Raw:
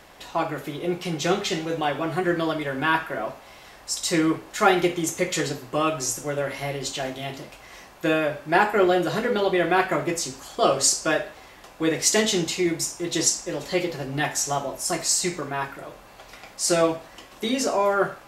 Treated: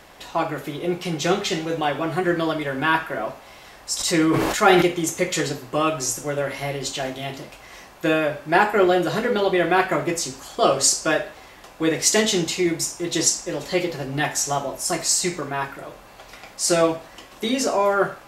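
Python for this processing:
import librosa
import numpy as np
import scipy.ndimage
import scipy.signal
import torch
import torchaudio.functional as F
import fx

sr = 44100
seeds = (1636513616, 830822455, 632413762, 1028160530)

y = fx.sustainer(x, sr, db_per_s=29.0, at=(3.98, 4.81), fade=0.02)
y = y * librosa.db_to_amplitude(2.0)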